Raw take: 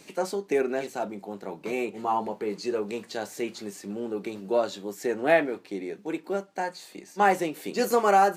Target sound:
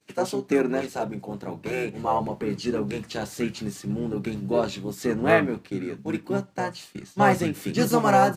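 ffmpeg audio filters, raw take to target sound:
ffmpeg -i in.wav -filter_complex "[0:a]asubboost=boost=4.5:cutoff=200,agate=range=-33dB:threshold=-42dB:ratio=3:detection=peak,asplit=2[link_01][link_02];[link_02]asetrate=29433,aresample=44100,atempo=1.49831,volume=-5dB[link_03];[link_01][link_03]amix=inputs=2:normalize=0,volume=2dB" out.wav

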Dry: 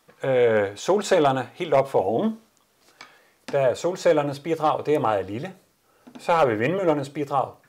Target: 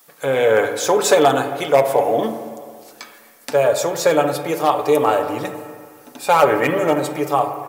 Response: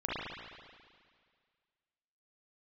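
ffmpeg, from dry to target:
-filter_complex "[0:a]aemphasis=mode=production:type=bsi,aecho=1:1:7:0.43,asplit=2[link_01][link_02];[1:a]atrim=start_sample=2205,lowpass=2100[link_03];[link_02][link_03]afir=irnorm=-1:irlink=0,volume=-11.5dB[link_04];[link_01][link_04]amix=inputs=2:normalize=0,volume=3.5dB"

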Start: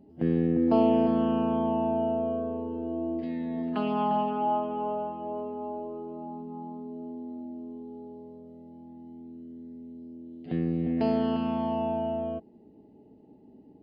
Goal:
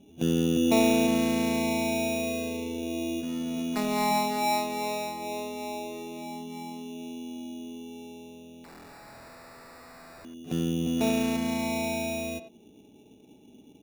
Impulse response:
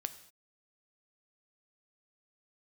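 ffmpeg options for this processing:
-filter_complex "[0:a]acrusher=samples=14:mix=1:aa=0.000001,asettb=1/sr,asplit=3[link_01][link_02][link_03];[link_01]atrim=end=8.644[link_04];[link_02]atrim=start=8.64:end=10.25,asetpts=PTS-STARTPTS,afade=type=in:duration=0.004:curve=qsin,afade=type=out:start_time=1.606:duration=0.004:curve=qsin,aeval=exprs='(mod(178*val(0)+1,2)-1)/178':channel_layout=same[link_05];[link_03]atrim=start=10.246[link_06];[link_04][link_05]acrossfade=duration=0.004:curve1=hsin:curve2=qsin[link_07];[link_07][link_06]acrossfade=duration=0.004:curve1=qsin:curve2=hsin,asplit=2[link_08][link_09];[link_09]adelay=90,highpass=300,lowpass=3400,asoftclip=type=hard:threshold=-21.5dB,volume=-11dB[link_10];[link_08][link_10]amix=inputs=2:normalize=0"

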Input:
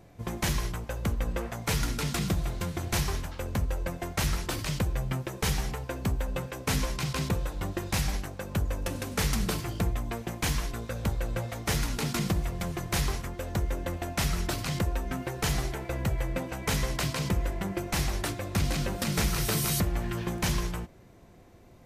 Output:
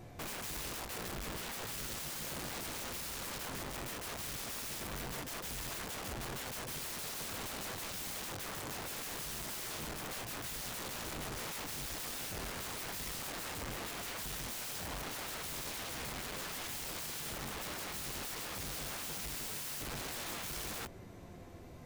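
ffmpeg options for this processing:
ffmpeg -i in.wav -filter_complex "[0:a]asettb=1/sr,asplit=3[link_01][link_02][link_03];[link_01]atrim=end=6.804[link_04];[link_02]atrim=start=6.8:end=9.06,asetpts=PTS-STARTPTS,afade=type=in:duration=0.004:curve=qsin,afade=type=out:start_time=2.256:duration=0.004:curve=qsin,highpass=frequency=73:poles=1[link_05];[link_03]atrim=start=9.056[link_06];[link_04][link_05]acrossfade=duration=0.004:curve1=hsin:curve2=qsin[link_07];[link_07][link_06]acrossfade=duration=0.004:curve1=qsin:curve2=hsin,asoftclip=type=hard:threshold=-32dB,flanger=delay=8.1:depth=7.9:regen=-29:speed=0.15:shape=triangular,aeval=exprs='(mod(158*val(0)+1,2)-1)/158':channel_layout=same,volume=6.5dB" out.wav

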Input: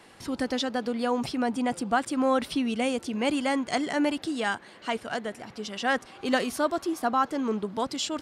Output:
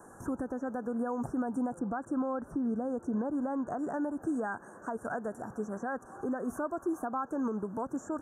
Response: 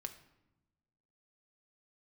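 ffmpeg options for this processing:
-filter_complex "[0:a]asettb=1/sr,asplit=3[link_01][link_02][link_03];[link_01]atrim=end=1.794[link_04];[link_02]atrim=start=1.79:end=3.79,asetpts=PTS-STARTPTS,afade=type=in:duration=0.004:curve=qsin,afade=type=out:start_time=1.996:duration=0.004:curve=qsin,aemphasis=mode=reproduction:type=75kf[link_05];[link_03]atrim=start=3.786[link_06];[link_04][link_05]acrossfade=duration=0.004:curve1=hsin:curve2=qsin[link_07];[link_07][link_06]acrossfade=duration=0.004:curve1=qsin:curve2=hsin,acrossover=split=2600[link_08][link_09];[link_09]acompressor=threshold=-50dB:ratio=4:attack=1:release=60[link_10];[link_08][link_10]amix=inputs=2:normalize=0,equalizer=frequency=5200:width_type=o:width=0.77:gain=-2.5,acompressor=threshold=-27dB:ratio=6,alimiter=level_in=2.5dB:limit=-24dB:level=0:latency=1:release=182,volume=-2.5dB,asuperstop=centerf=3200:order=20:qfactor=0.74,volume=2dB"

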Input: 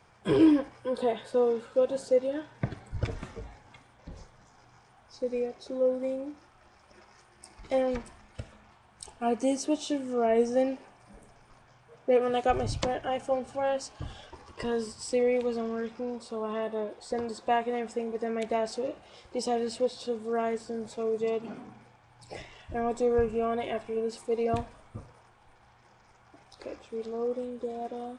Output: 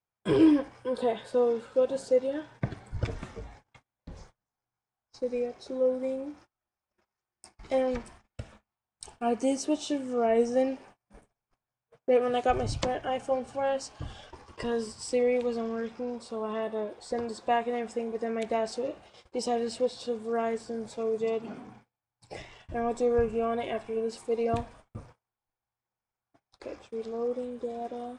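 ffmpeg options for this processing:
ffmpeg -i in.wav -af "agate=range=-33dB:threshold=-51dB:ratio=16:detection=peak" out.wav

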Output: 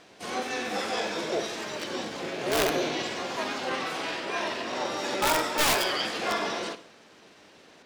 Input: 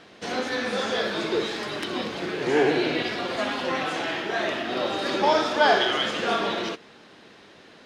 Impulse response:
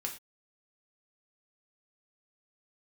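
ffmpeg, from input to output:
-filter_complex "[0:a]aeval=exprs='(mod(4.22*val(0)+1,2)-1)/4.22':channel_layout=same,asplit=2[link_01][link_02];[link_02]asetrate=66075,aresample=44100,atempo=0.66742,volume=-1dB[link_03];[link_01][link_03]amix=inputs=2:normalize=0,asplit=2[link_04][link_05];[1:a]atrim=start_sample=2205,asetrate=30870,aresample=44100,adelay=57[link_06];[link_05][link_06]afir=irnorm=-1:irlink=0,volume=-16.5dB[link_07];[link_04][link_07]amix=inputs=2:normalize=0,volume=-6.5dB"

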